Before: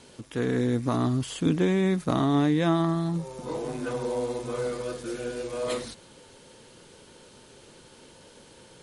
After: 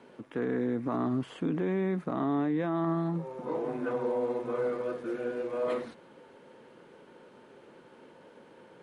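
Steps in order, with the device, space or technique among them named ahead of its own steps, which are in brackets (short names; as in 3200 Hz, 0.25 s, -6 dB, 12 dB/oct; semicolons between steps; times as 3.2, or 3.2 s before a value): DJ mixer with the lows and highs turned down (three-band isolator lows -20 dB, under 160 Hz, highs -22 dB, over 2300 Hz; limiter -22 dBFS, peak gain reduction 9 dB)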